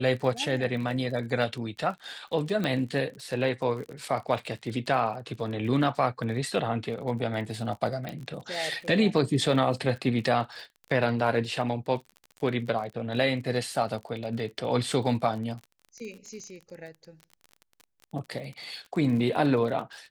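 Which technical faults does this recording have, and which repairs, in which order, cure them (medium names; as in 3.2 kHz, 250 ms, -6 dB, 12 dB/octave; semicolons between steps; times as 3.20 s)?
crackle 36 per s -36 dBFS
2.64 s: pop -16 dBFS
8.09 s: pop -21 dBFS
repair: de-click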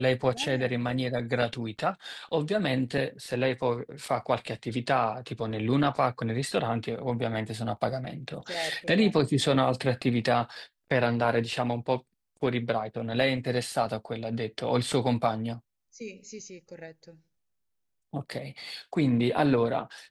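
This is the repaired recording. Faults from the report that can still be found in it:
8.09 s: pop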